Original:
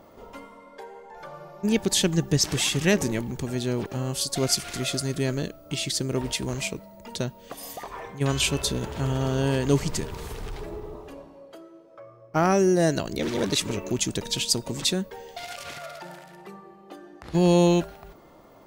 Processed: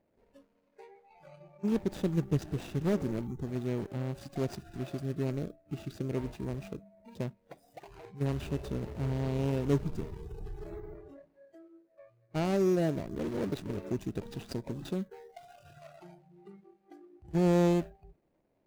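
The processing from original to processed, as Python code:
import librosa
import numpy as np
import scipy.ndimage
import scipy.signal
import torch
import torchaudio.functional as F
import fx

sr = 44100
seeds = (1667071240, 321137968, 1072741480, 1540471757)

y = scipy.signal.medfilt(x, 41)
y = fx.noise_reduce_blind(y, sr, reduce_db=15)
y = y * librosa.db_to_amplitude(-5.5)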